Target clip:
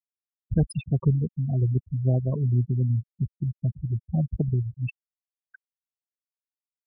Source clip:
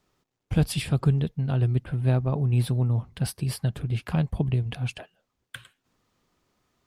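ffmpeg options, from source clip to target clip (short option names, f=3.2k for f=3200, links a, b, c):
-af "acrusher=bits=5:mode=log:mix=0:aa=0.000001,afftfilt=real='re*gte(hypot(re,im),0.112)':imag='im*gte(hypot(re,im),0.112)':win_size=1024:overlap=0.75"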